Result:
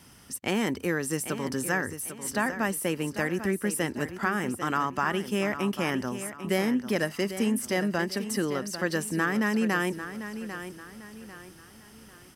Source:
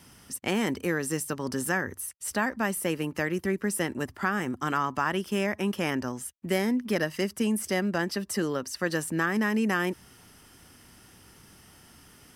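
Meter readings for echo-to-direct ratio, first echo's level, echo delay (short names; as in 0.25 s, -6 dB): -10.5 dB, -11.0 dB, 0.796 s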